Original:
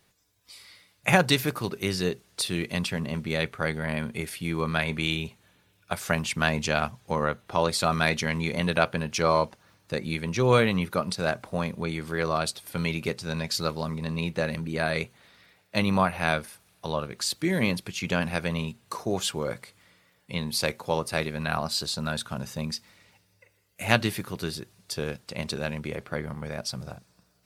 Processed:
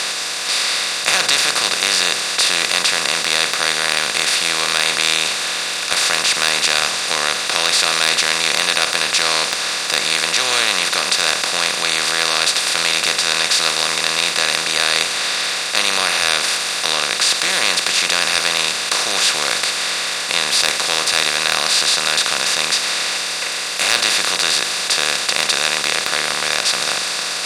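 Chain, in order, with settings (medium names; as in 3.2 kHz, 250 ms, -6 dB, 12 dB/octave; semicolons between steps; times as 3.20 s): spectral levelling over time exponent 0.2; frequency weighting ITU-R 468; sine folder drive 4 dB, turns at 11.5 dBFS; trim -13 dB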